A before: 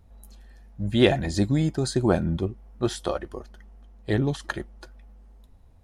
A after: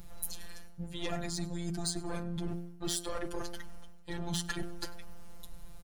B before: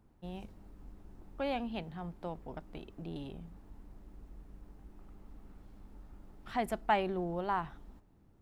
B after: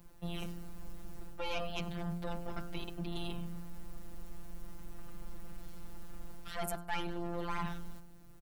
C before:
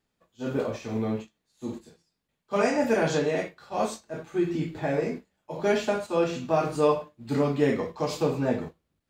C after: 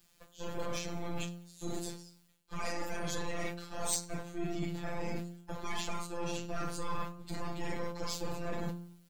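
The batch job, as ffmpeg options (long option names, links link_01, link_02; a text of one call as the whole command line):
ffmpeg -i in.wav -filter_complex "[0:a]acrossover=split=220|2200[link_01][link_02][link_03];[link_02]aeval=exprs='max(val(0),0)':channel_layout=same[link_04];[link_01][link_04][link_03]amix=inputs=3:normalize=0,afftfilt=real='hypot(re,im)*cos(PI*b)':imag='0':win_size=1024:overlap=0.75,areverse,acompressor=threshold=-43dB:ratio=12,areverse,bandreject=frequency=86.64:width_type=h:width=4,bandreject=frequency=173.28:width_type=h:width=4,bandreject=frequency=259.92:width_type=h:width=4,bandreject=frequency=346.56:width_type=h:width=4,bandreject=frequency=433.2:width_type=h:width=4,bandreject=frequency=519.84:width_type=h:width=4,bandreject=frequency=606.48:width_type=h:width=4,bandreject=frequency=693.12:width_type=h:width=4,bandreject=frequency=779.76:width_type=h:width=4,bandreject=frequency=866.4:width_type=h:width=4,bandreject=frequency=953.04:width_type=h:width=4,bandreject=frequency=1039.68:width_type=h:width=4,bandreject=frequency=1126.32:width_type=h:width=4,bandreject=frequency=1212.96:width_type=h:width=4,bandreject=frequency=1299.6:width_type=h:width=4,bandreject=frequency=1386.24:width_type=h:width=4,bandreject=frequency=1472.88:width_type=h:width=4,bandreject=frequency=1559.52:width_type=h:width=4,bandreject=frequency=1646.16:width_type=h:width=4,asoftclip=type=tanh:threshold=-39.5dB,highshelf=frequency=5800:gain=9.5,aecho=1:1:98|196|294:0.075|0.0315|0.0132,volume=15dB" out.wav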